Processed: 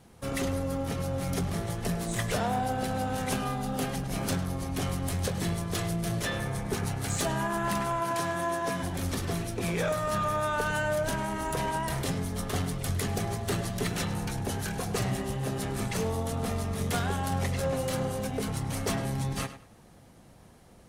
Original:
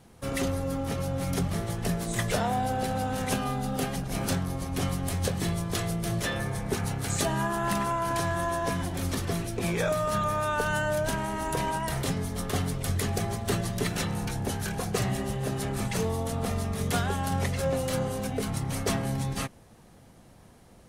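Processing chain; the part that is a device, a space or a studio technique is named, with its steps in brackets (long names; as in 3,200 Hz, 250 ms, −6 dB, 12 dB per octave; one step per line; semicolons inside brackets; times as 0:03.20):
0:08.00–0:08.83: high-pass filter 150 Hz 12 dB per octave
rockabilly slapback (tube saturation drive 20 dB, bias 0.3; tape delay 103 ms, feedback 27%, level −11.5 dB, low-pass 4,700 Hz)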